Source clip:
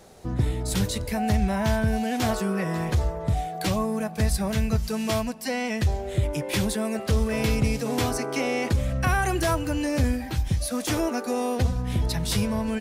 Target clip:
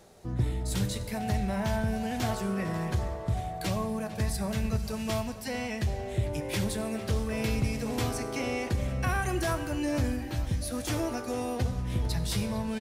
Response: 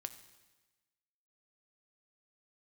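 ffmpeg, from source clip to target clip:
-filter_complex "[0:a]areverse,acompressor=mode=upward:threshold=-37dB:ratio=2.5,areverse,asplit=2[a][b];[b]adelay=451,lowpass=f=4.9k:p=1,volume=-14dB,asplit=2[c][d];[d]adelay=451,lowpass=f=4.9k:p=1,volume=0.48,asplit=2[e][f];[f]adelay=451,lowpass=f=4.9k:p=1,volume=0.48,asplit=2[g][h];[h]adelay=451,lowpass=f=4.9k:p=1,volume=0.48,asplit=2[i][j];[j]adelay=451,lowpass=f=4.9k:p=1,volume=0.48[k];[a][c][e][g][i][k]amix=inputs=6:normalize=0[l];[1:a]atrim=start_sample=2205[m];[l][m]afir=irnorm=-1:irlink=0,volume=-2.5dB"

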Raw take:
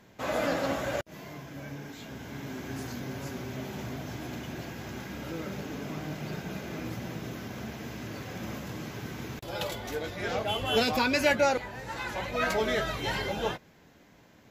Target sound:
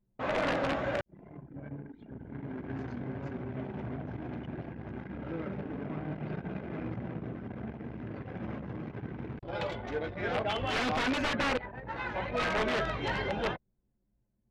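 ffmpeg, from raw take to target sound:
-af "aeval=exprs='(mod(11.9*val(0)+1,2)-1)/11.9':c=same,anlmdn=1,lowpass=2.7k"

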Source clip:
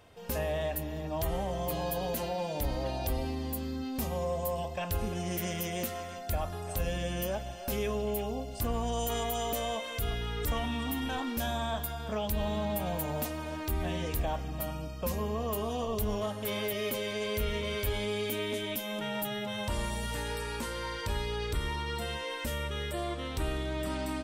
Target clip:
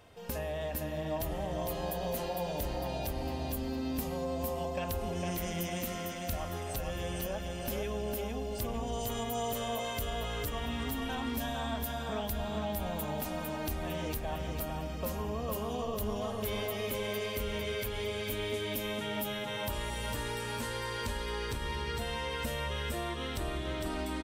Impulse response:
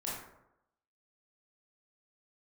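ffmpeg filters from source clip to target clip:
-filter_complex "[0:a]acompressor=threshold=-33dB:ratio=6,asplit=2[a][b];[b]aecho=0:1:454|908|1362|1816|2270|2724:0.631|0.297|0.139|0.0655|0.0308|0.0145[c];[a][c]amix=inputs=2:normalize=0"

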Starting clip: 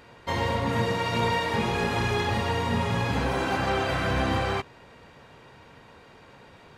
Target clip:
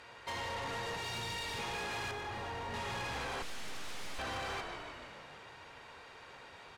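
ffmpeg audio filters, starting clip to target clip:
-filter_complex "[0:a]equalizer=f=190:w=0.52:g=-14,asettb=1/sr,asplit=3[a][b][c];[a]atrim=end=0.954[d];[b]atrim=start=0.95:end=1.59,asetpts=PTS-STARTPTS,afade=t=in:d=0.004:c=qsin,afade=t=out:st=0.636:d=0.004:c=qsin,acrossover=split=230|3000[e][f][g];[f]acompressor=threshold=-39dB:ratio=6[h];[e][h][g]amix=inputs=3:normalize=0[i];[c]atrim=start=1.586[j];[d][i]acrossfade=d=0.004:c1=hsin:c2=qsin[k];[k][j]acrossfade=d=0.004:c1=qsin:c2=hsin,highpass=77,acompressor=threshold=-32dB:ratio=6,asplit=9[l][m][n][o][p][q][r][s][t];[m]adelay=151,afreqshift=-47,volume=-9.5dB[u];[n]adelay=302,afreqshift=-94,volume=-13.7dB[v];[o]adelay=453,afreqshift=-141,volume=-17.8dB[w];[p]adelay=604,afreqshift=-188,volume=-22dB[x];[q]adelay=755,afreqshift=-235,volume=-26.1dB[y];[r]adelay=906,afreqshift=-282,volume=-30.3dB[z];[s]adelay=1057,afreqshift=-329,volume=-34.4dB[aa];[t]adelay=1208,afreqshift=-376,volume=-38.6dB[ab];[l][u][v][w][x][y][z][aa][ab]amix=inputs=9:normalize=0,asettb=1/sr,asplit=3[ac][ad][ae];[ac]atrim=end=3.424[af];[ad]atrim=start=3.42:end=4.19,asetpts=PTS-STARTPTS,afade=t=in:d=0.004:c=qsin,afade=t=out:st=0.766:d=0.004:c=qsin,aeval=exprs='abs(val(0))':c=same[ag];[ae]atrim=start=4.186[ah];[af][ag]acrossfade=d=0.004:c1=hsin:c2=qsin[ai];[ai][ah]acrossfade=d=0.004:c1=qsin:c2=hsin,lowpass=11k,asoftclip=type=tanh:threshold=-37dB,asettb=1/sr,asplit=3[aj][ak][al];[aj]atrim=end=2.114[am];[ak]atrim=start=2.11:end=2.74,asetpts=PTS-STARTPTS,afade=t=in:d=0.004:c=qsin,afade=t=out:st=0.626:d=0.004:c=qsin,highshelf=f=2.4k:g=-10[an];[al]atrim=start=2.736[ao];[am][an]acrossfade=d=0.004:c1=hsin:c2=qsin[ap];[ap][ao]acrossfade=d=0.004:c1=qsin:c2=hsin,volume=1dB"

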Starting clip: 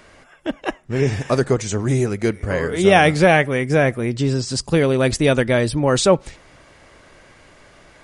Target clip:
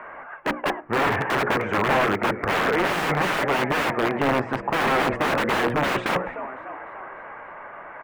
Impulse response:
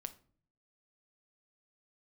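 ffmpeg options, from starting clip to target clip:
-filter_complex "[0:a]firequalizer=gain_entry='entry(290,0);entry(910,15);entry(2600,4);entry(4200,-17)':delay=0.05:min_phase=1,apsyclip=7dB,bandreject=f=60:t=h:w=6,bandreject=f=120:t=h:w=6,bandreject=f=180:t=h:w=6,bandreject=f=240:t=h:w=6,bandreject=f=300:t=h:w=6,bandreject=f=360:t=h:w=6,bandreject=f=420:t=h:w=6,bandreject=f=480:t=h:w=6,bandreject=f=540:t=h:w=6,asplit=2[a][b];[b]asplit=5[c][d][e][f][g];[c]adelay=296,afreqshift=66,volume=-22dB[h];[d]adelay=592,afreqshift=132,volume=-26.4dB[i];[e]adelay=888,afreqshift=198,volume=-30.9dB[j];[f]adelay=1184,afreqshift=264,volume=-35.3dB[k];[g]adelay=1480,afreqshift=330,volume=-39.7dB[l];[h][i][j][k][l]amix=inputs=5:normalize=0[m];[a][m]amix=inputs=2:normalize=0,aeval=exprs='(mod(2.24*val(0)+1,2)-1)/2.24':c=same,acrossover=split=160 2400:gain=0.251 1 0.0794[n][o][p];[n][o][p]amix=inputs=3:normalize=0,volume=-5.5dB"

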